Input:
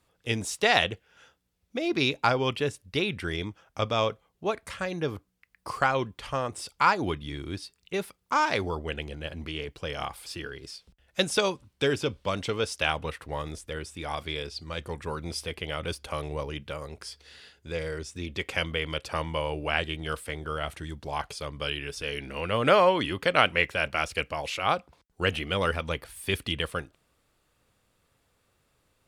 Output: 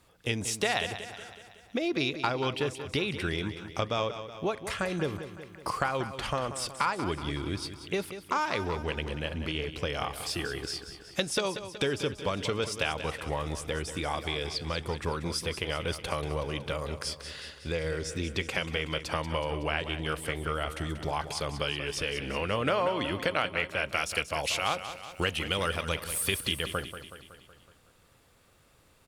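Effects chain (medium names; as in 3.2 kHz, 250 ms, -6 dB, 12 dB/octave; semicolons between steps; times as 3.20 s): 23.88–26.59 s: treble shelf 3.6 kHz +11 dB; compression 3:1, threshold -37 dBFS, peak gain reduction 16.5 dB; feedback delay 186 ms, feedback 57%, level -11 dB; trim +7 dB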